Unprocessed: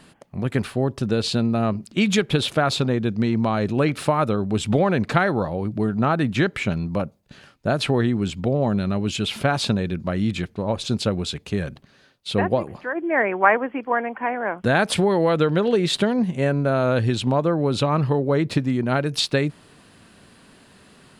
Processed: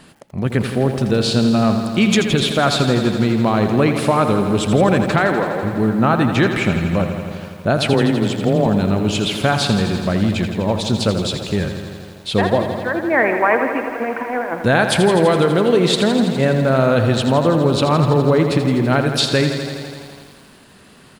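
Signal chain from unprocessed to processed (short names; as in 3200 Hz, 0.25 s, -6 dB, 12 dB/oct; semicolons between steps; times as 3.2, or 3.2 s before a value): 5.2–5.62 HPF 160 Hz -> 520 Hz 12 dB/oct; 7.93–8.66 frequency shift +18 Hz; 13.89–14.6 negative-ratio compressor -28 dBFS, ratio -0.5; frequency-shifting echo 0.157 s, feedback 63%, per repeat +110 Hz, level -22.5 dB; maximiser +8 dB; lo-fi delay 83 ms, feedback 80%, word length 7-bit, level -9 dB; gain -3.5 dB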